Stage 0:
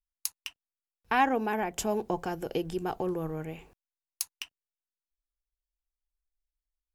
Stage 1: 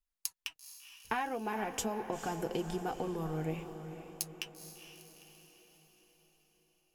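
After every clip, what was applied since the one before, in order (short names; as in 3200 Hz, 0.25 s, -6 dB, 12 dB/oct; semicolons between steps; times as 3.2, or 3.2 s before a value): compressor 5:1, threshold -33 dBFS, peak gain reduction 13 dB; flange 0.34 Hz, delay 3.8 ms, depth 6.8 ms, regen +37%; diffused feedback echo 0.461 s, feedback 53%, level -10 dB; gain +4.5 dB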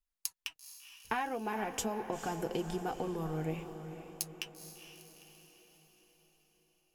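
nothing audible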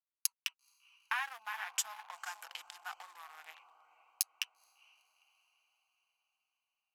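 Wiener smoothing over 25 samples; inverse Chebyshev high-pass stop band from 440 Hz, stop band 50 dB; gain +4.5 dB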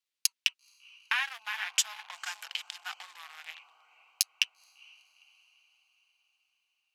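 weighting filter D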